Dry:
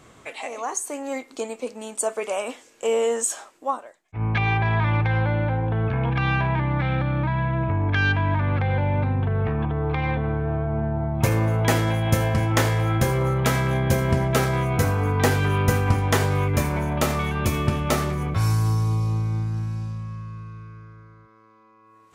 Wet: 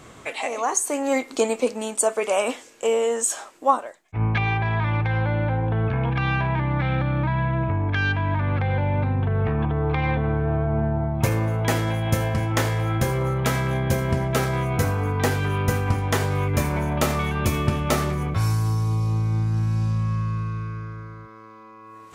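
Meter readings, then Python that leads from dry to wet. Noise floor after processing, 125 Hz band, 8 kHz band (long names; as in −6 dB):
−45 dBFS, −0.5 dB, +2.0 dB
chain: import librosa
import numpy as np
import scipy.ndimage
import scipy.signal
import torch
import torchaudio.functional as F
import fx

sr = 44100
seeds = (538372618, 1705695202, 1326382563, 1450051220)

y = fx.rider(x, sr, range_db=10, speed_s=0.5)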